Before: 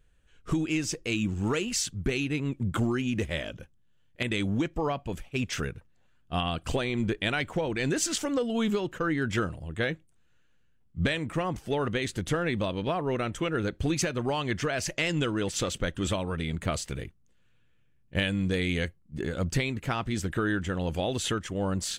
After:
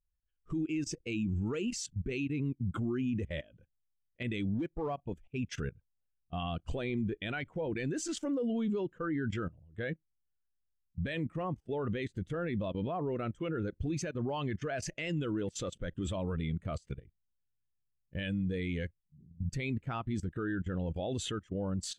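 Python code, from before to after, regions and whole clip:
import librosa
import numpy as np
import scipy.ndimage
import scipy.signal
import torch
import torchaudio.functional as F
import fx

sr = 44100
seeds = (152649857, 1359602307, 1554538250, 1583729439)

y = fx.chain(x, sr, fx.law_mismatch(coded='A'),
    fx.clip_hard(threshold_db=-25.0), at=(4.54, 4.98))
y = fx.chain(y, sr, fx.ladder_lowpass(hz=230.0, resonance_pct=25),
    fx.doubler(ms=35.0, db=-2.5), at=(19.0, 19.49))
y = fx.level_steps(y, sr, step_db=17)
y = fx.spectral_expand(y, sr, expansion=1.5)
y = y * 10.0 ** (-4.0 / 20.0)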